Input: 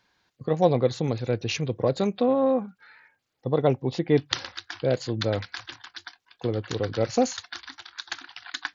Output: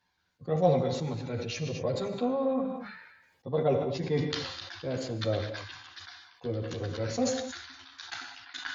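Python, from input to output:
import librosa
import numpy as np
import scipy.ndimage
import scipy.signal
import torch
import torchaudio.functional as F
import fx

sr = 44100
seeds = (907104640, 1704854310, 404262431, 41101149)

y = fx.chorus_voices(x, sr, voices=4, hz=0.23, base_ms=12, depth_ms=1.1, mix_pct=55)
y = fx.rev_gated(y, sr, seeds[0], gate_ms=270, shape='flat', drr_db=7.0)
y = fx.sustainer(y, sr, db_per_s=53.0)
y = y * 10.0 ** (-5.0 / 20.0)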